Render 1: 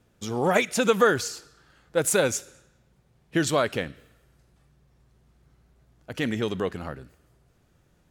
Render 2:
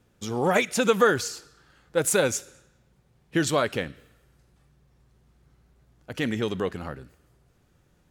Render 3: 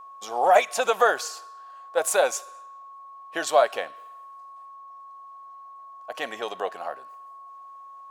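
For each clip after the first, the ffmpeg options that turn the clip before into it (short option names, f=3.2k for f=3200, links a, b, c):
-af "bandreject=f=650:w=19"
-af "highpass=f=690:t=q:w=4.9,aeval=exprs='val(0)+0.01*sin(2*PI*1100*n/s)':c=same,bandreject=f=2.1k:w=20,volume=-1.5dB"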